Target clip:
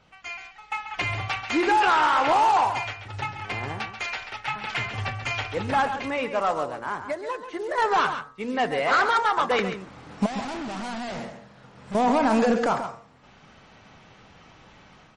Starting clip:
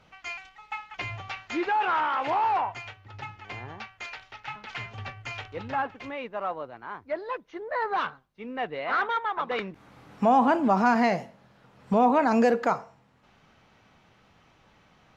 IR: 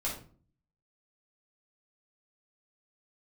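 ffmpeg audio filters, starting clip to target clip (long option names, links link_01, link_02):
-filter_complex "[0:a]bandreject=frequency=116.2:width_type=h:width=4,bandreject=frequency=232.4:width_type=h:width=4,bandreject=frequency=348.6:width_type=h:width=4,bandreject=frequency=464.8:width_type=h:width=4,bandreject=frequency=581:width_type=h:width=4,bandreject=frequency=697.2:width_type=h:width=4,bandreject=frequency=813.4:width_type=h:width=4,bandreject=frequency=929.6:width_type=h:width=4,bandreject=frequency=1045.8:width_type=h:width=4,bandreject=frequency=1162:width_type=h:width=4,bandreject=frequency=1278.2:width_type=h:width=4,bandreject=frequency=1394.4:width_type=h:width=4,bandreject=frequency=1510.6:width_type=h:width=4,bandreject=frequency=1626.8:width_type=h:width=4,bandreject=frequency=1743:width_type=h:width=4,bandreject=frequency=1859.2:width_type=h:width=4,bandreject=frequency=1975.4:width_type=h:width=4,bandreject=frequency=2091.6:width_type=h:width=4,dynaudnorm=framelen=500:gausssize=3:maxgain=9dB,alimiter=limit=-10dB:level=0:latency=1:release=48,asettb=1/sr,asplit=3[link_01][link_02][link_03];[link_01]atrim=end=7.034[link_04];[link_02]atrim=start=7.03:end=7.78,asetpts=PTS-STARTPTS,afade=type=in:duration=0.004:curve=qsin,afade=type=out:start_time=0.746:duration=0.004:curve=qsin,acompressor=threshold=-26dB:ratio=12[link_05];[link_03]atrim=start=7.776[link_06];[link_04][link_05]acrossfade=duration=0.004:curve1=hsin:curve2=qsin[link_07];[link_07][link_06]acrossfade=duration=0.004:curve1=qsin:curve2=hsin,asoftclip=type=tanh:threshold=-14.5dB,acrusher=bits=5:mode=log:mix=0:aa=0.000001,asettb=1/sr,asplit=3[link_08][link_09][link_10];[link_08]atrim=end=10.264[link_11];[link_09]atrim=start=10.26:end=11.95,asetpts=PTS-STARTPTS,afade=type=in:duration=0.004:curve=qsin,afade=type=out:start_time=1.686:duration=0.004:curve=qsin,asoftclip=type=hard:threshold=-32dB[link_12];[link_10]atrim=start=11.946[link_13];[link_11][link_12]acrossfade=duration=0.004:curve1=hsin:curve2=qsin[link_14];[link_14][link_13]acrossfade=duration=0.004:curve1=qsin:curve2=hsin,aecho=1:1:136:0.335" -ar 48000 -c:a libmp3lame -b:a 40k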